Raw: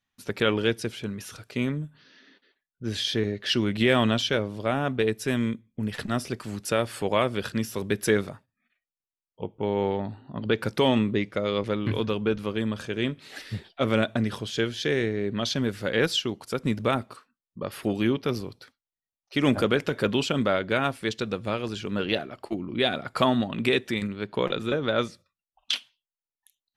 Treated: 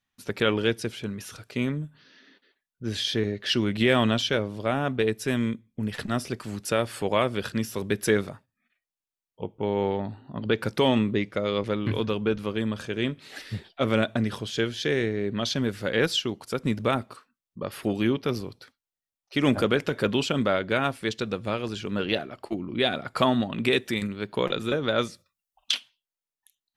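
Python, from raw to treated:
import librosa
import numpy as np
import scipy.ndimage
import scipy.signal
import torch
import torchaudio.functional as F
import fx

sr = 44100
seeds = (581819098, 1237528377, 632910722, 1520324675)

y = fx.high_shelf(x, sr, hz=fx.line((23.71, 8100.0), (25.71, 5700.0)), db=8.5, at=(23.71, 25.71), fade=0.02)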